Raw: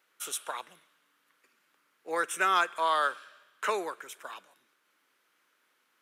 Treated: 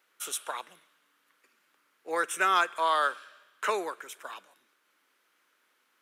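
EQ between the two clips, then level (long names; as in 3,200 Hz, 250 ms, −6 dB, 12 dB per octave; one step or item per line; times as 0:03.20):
high-pass filter 160 Hz
+1.0 dB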